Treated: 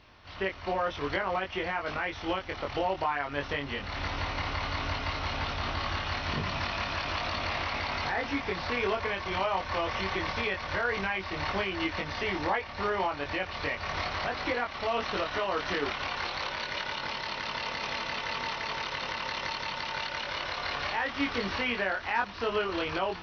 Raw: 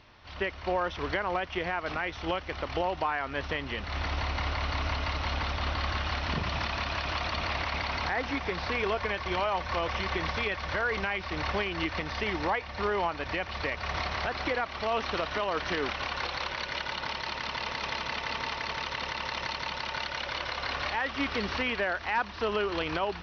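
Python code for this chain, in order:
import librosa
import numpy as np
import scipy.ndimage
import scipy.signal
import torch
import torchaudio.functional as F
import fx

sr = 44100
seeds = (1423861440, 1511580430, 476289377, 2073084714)

y = fx.doubler(x, sr, ms=21.0, db=-2.5)
y = y * librosa.db_to_amplitude(-2.0)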